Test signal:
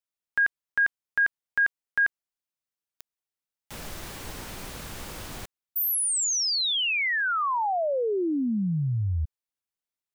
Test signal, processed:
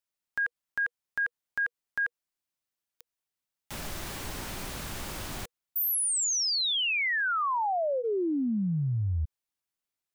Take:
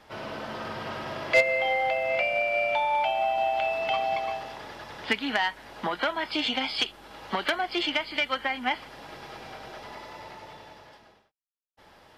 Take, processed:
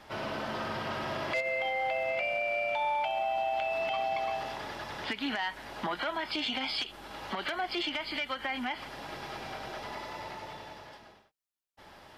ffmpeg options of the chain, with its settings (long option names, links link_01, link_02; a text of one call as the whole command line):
ffmpeg -i in.wav -af "bandreject=frequency=480:width=12,acompressor=threshold=-27dB:ratio=10:attack=0.18:release=103:knee=6:detection=rms,volume=2dB" out.wav